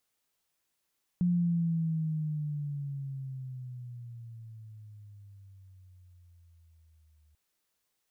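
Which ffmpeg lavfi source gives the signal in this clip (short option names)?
-f lavfi -i "aevalsrc='pow(10,(-23-38.5*t/6.14)/20)*sin(2*PI*178*6.14/(-15*log(2)/12)*(exp(-15*log(2)/12*t/6.14)-1))':d=6.14:s=44100"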